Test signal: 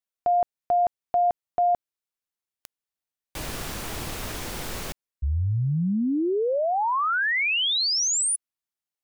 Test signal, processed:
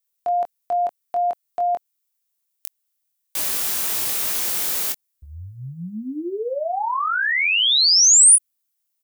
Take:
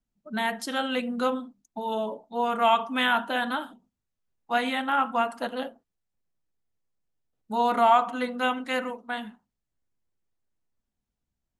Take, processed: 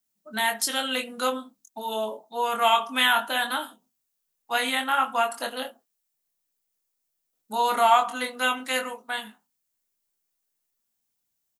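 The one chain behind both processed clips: RIAA curve recording; doubler 23 ms -6 dB

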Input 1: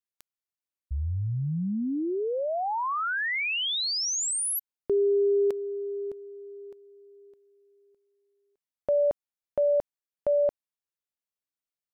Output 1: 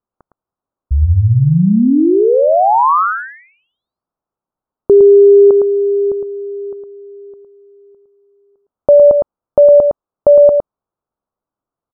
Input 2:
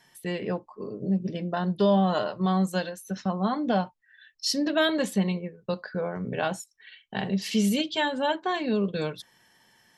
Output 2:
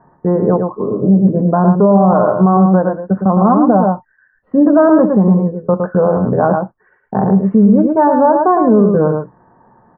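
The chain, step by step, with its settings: steep low-pass 1300 Hz 48 dB/oct; on a send: echo 0.11 s -6 dB; on the sum: maximiser +18.5 dB; gain -1 dB

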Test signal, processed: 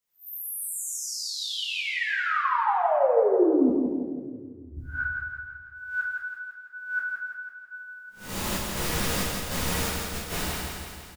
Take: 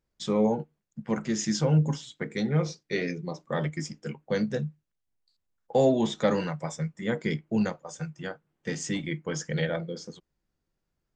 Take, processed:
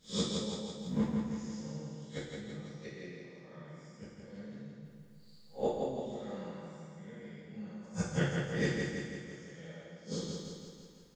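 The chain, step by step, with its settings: time blur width 0.178 s; flipped gate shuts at -33 dBFS, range -33 dB; feedback echo 0.166 s, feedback 59%, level -4 dB; two-slope reverb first 0.63 s, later 2.4 s, from -26 dB, DRR -8 dB; gain +7 dB

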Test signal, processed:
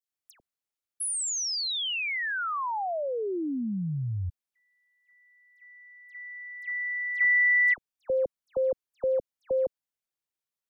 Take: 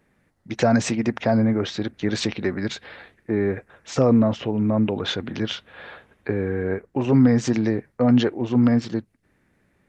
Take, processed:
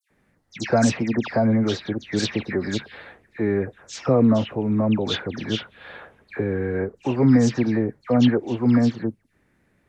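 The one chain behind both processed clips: dispersion lows, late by 0.105 s, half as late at 2300 Hz

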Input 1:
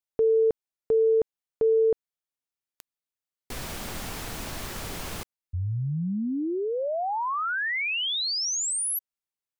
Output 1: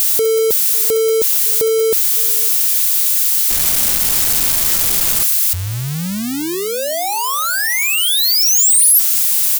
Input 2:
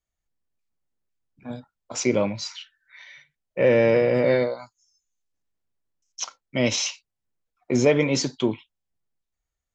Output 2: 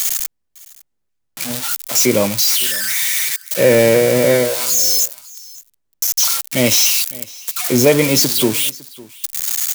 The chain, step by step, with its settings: switching spikes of -14.5 dBFS; on a send: echo 0.556 s -22 dB; on the sum: gain +6.5 dB

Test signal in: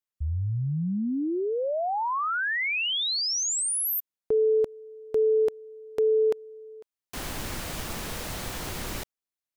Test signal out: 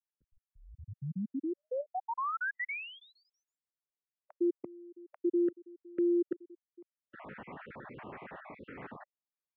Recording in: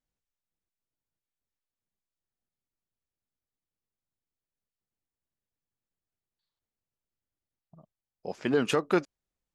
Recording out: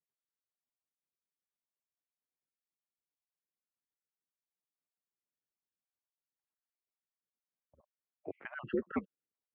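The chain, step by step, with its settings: random spectral dropouts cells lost 46%; mistuned SSB -90 Hz 240–2300 Hz; gain -5.5 dB

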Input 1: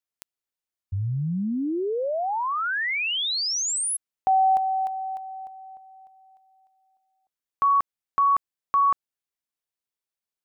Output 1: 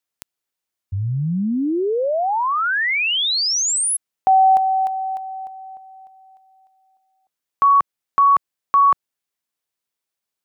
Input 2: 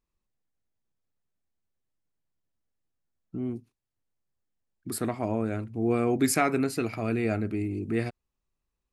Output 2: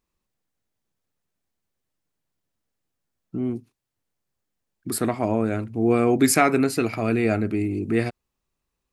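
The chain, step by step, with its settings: low shelf 73 Hz -7.5 dB; gain +6.5 dB

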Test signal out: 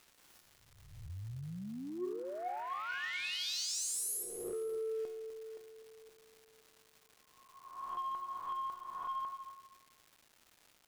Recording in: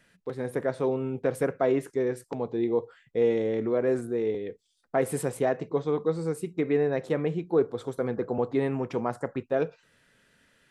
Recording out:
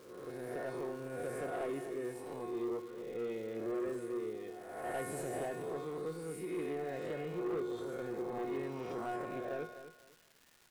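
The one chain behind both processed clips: spectral swells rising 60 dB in 1.09 s; resonator 360 Hz, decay 0.85 s, mix 90%; soft clip -36.5 dBFS; feedback echo 0.251 s, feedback 23%, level -12 dB; crackle 500/s -55 dBFS; gain +4.5 dB

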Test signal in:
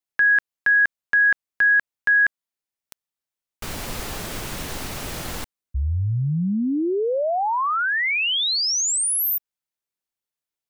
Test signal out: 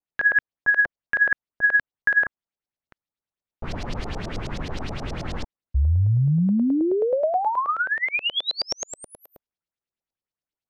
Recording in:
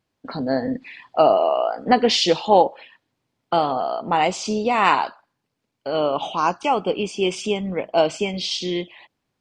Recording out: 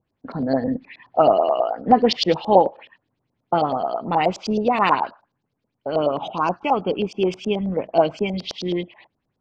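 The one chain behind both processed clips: low shelf 440 Hz +10 dB; LFO low-pass saw up 9.4 Hz 550–5900 Hz; gain -6 dB

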